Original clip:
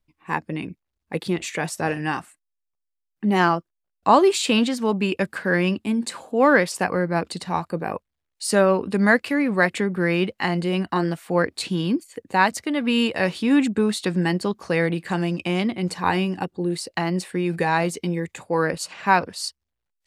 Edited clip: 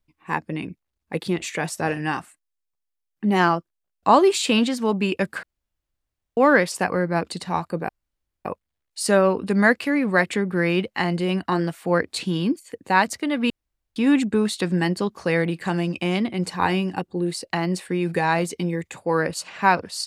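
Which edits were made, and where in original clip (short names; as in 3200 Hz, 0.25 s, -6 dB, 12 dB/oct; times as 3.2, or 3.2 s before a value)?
5.43–6.37 room tone
7.89 insert room tone 0.56 s
12.94–13.4 room tone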